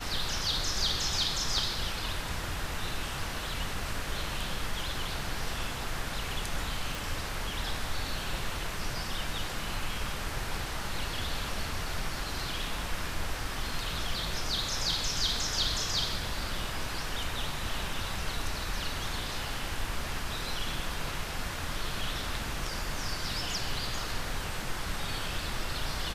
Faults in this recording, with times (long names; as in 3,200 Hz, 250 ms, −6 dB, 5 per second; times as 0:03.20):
0:06.95: click